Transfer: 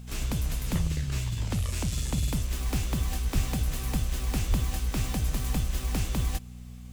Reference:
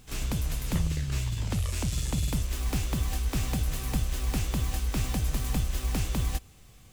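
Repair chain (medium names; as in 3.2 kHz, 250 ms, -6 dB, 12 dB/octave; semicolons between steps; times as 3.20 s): de-hum 60.9 Hz, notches 4; de-plosive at 3.34/4.49 s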